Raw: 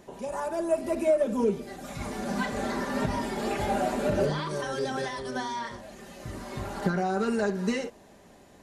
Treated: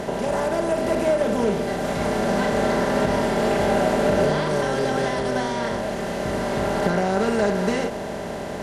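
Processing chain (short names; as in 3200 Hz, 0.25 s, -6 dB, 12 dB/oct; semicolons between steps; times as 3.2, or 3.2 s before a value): per-bin compression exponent 0.4; ending taper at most 150 dB/s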